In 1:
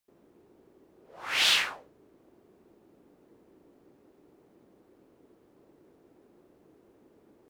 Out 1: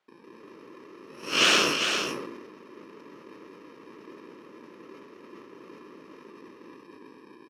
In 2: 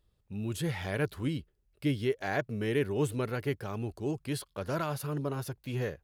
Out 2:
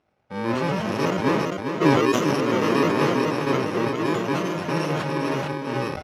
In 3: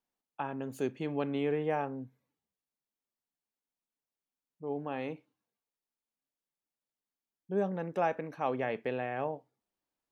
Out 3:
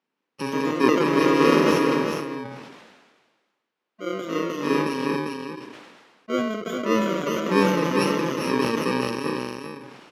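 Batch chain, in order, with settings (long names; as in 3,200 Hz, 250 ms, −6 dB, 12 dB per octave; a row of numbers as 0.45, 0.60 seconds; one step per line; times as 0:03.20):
samples in bit-reversed order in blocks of 64 samples
delay with pitch and tempo change per echo 167 ms, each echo +2 semitones, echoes 2
band-pass filter 280–3,300 Hz
high-shelf EQ 2,400 Hz −8.5 dB
single-tap delay 399 ms −6.5 dB
level that may fall only so fast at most 39 dB per second
loudness normalisation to −23 LKFS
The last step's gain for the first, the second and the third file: +15.0, +14.0, +18.5 decibels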